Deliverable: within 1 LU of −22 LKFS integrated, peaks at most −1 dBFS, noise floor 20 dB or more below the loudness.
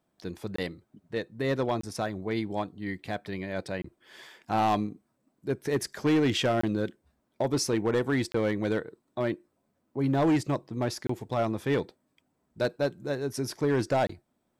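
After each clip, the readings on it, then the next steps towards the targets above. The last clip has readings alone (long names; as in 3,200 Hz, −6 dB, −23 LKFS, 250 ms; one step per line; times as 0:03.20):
share of clipped samples 1.3%; peaks flattened at −19.5 dBFS; number of dropouts 7; longest dropout 24 ms; integrated loudness −30.0 LKFS; sample peak −19.5 dBFS; target loudness −22.0 LKFS
→ clipped peaks rebuilt −19.5 dBFS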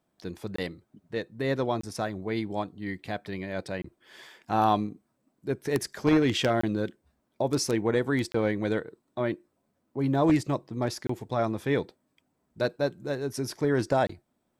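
share of clipped samples 0.0%; number of dropouts 7; longest dropout 24 ms
→ repair the gap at 0:00.56/0:01.81/0:03.82/0:06.61/0:08.32/0:11.07/0:14.07, 24 ms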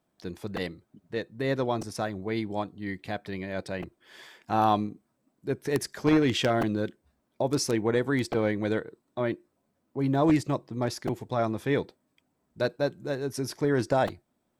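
number of dropouts 0; integrated loudness −29.0 LKFS; sample peak −10.5 dBFS; target loudness −22.0 LKFS
→ level +7 dB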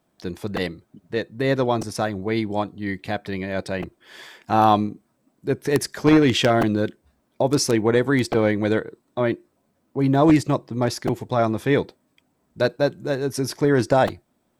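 integrated loudness −22.0 LKFS; sample peak −3.5 dBFS; background noise floor −69 dBFS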